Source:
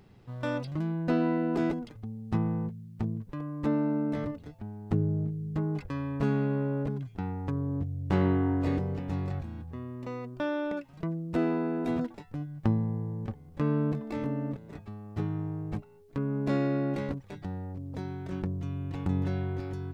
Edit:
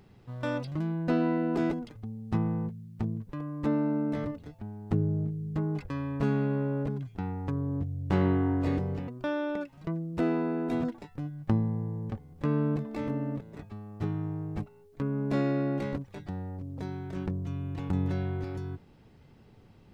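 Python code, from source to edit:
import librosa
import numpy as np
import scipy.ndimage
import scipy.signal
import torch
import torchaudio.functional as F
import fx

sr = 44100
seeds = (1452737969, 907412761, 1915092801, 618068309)

y = fx.edit(x, sr, fx.cut(start_s=9.08, length_s=1.16), tone=tone)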